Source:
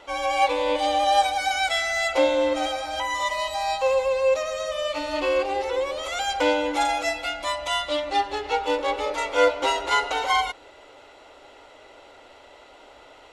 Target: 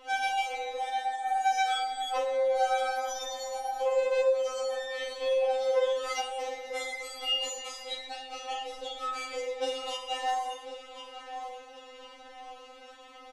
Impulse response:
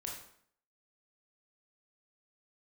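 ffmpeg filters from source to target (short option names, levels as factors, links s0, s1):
-filter_complex "[0:a]bandreject=f=64.62:t=h:w=4,bandreject=f=129.24:t=h:w=4,bandreject=f=193.86:t=h:w=4,bandreject=f=258.48:t=h:w=4,bandreject=f=323.1:t=h:w=4,bandreject=f=387.72:t=h:w=4,bandreject=f=452.34:t=h:w=4,bandreject=f=516.96:t=h:w=4,bandreject=f=581.58:t=h:w=4,bandreject=f=646.2:t=h:w=4,asettb=1/sr,asplit=3[s0][s1][s2];[s0]atrim=end=0.434[s3];[s1]atrim=start=0.43:end=2.4,asetpts=PTS-STARTPTS,afade=t=in:d=0.004:c=qsin,afade=t=out:st=1.966:d=0.004:c=qsin,equalizer=f=1200:w=4.5:g=13[s4];[s2]atrim=start=2.396[s5];[s3][s4]acrossfade=d=0.004:c1=hsin:c2=qsin[s6];[s6][s5]acrossfade=d=0.004:c1=qsin:c2=hsin,asplit=2[s7][s8];[s8]adelay=1044,lowpass=f=4400:p=1,volume=0.15,asplit=2[s9][s10];[s10]adelay=1044,lowpass=f=4400:p=1,volume=0.47,asplit=2[s11][s12];[s12]adelay=1044,lowpass=f=4400:p=1,volume=0.47,asplit=2[s13][s14];[s14]adelay=1044,lowpass=f=4400:p=1,volume=0.47[s15];[s7][s9][s11][s13][s15]amix=inputs=5:normalize=0,alimiter=limit=0.15:level=0:latency=1:release=239[s16];[1:a]atrim=start_sample=2205[s17];[s16][s17]afir=irnorm=-1:irlink=0,acompressor=threshold=0.0398:ratio=6,afftfilt=real='re*3.46*eq(mod(b,12),0)':imag='im*3.46*eq(mod(b,12),0)':win_size=2048:overlap=0.75,volume=1.41"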